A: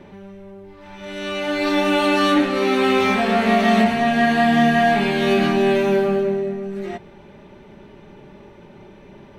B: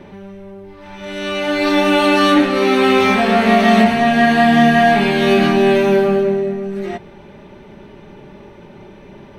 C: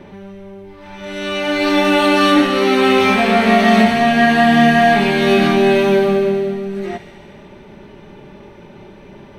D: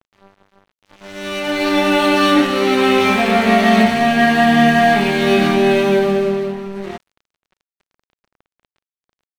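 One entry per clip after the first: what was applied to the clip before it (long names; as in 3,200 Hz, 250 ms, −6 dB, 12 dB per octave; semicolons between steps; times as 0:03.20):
notch filter 7,200 Hz, Q 12; level +4.5 dB
delay with a high-pass on its return 73 ms, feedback 80%, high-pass 2,000 Hz, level −9 dB
dead-zone distortion −30 dBFS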